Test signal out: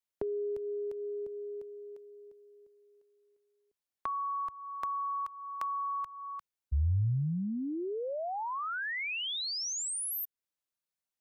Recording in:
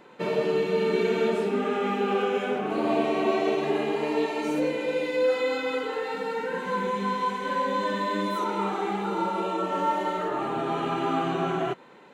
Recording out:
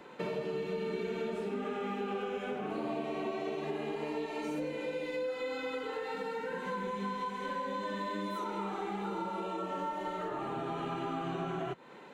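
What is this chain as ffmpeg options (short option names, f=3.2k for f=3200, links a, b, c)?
-filter_complex "[0:a]acrossover=split=120[a][b];[b]acompressor=threshold=-36dB:ratio=4[c];[a][c]amix=inputs=2:normalize=0"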